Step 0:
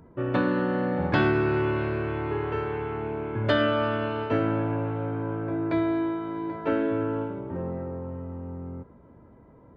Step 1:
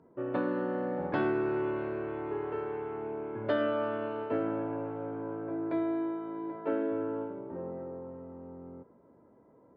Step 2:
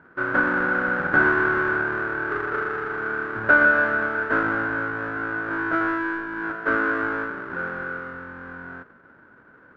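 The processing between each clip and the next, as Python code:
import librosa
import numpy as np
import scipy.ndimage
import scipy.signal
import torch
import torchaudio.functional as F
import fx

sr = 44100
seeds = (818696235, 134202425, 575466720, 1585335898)

y1 = scipy.signal.sosfilt(scipy.signal.butter(2, 430.0, 'highpass', fs=sr, output='sos'), x)
y1 = fx.tilt_eq(y1, sr, slope=-4.5)
y1 = y1 * 10.0 ** (-7.0 / 20.0)
y2 = fx.halfwave_hold(y1, sr)
y2 = fx.lowpass_res(y2, sr, hz=1500.0, q=15.0)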